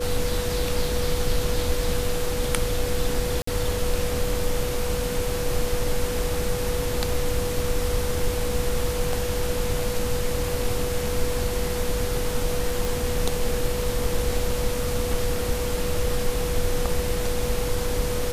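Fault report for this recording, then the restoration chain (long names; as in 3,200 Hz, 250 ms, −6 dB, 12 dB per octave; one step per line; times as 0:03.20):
whistle 490 Hz −28 dBFS
0:03.42–0:03.47: drop-out 54 ms
0:12.85: click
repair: click removal
notch filter 490 Hz, Q 30
repair the gap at 0:03.42, 54 ms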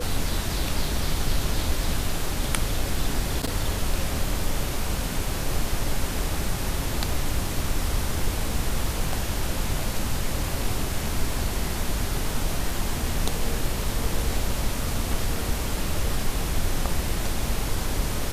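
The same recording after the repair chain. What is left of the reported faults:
none of them is left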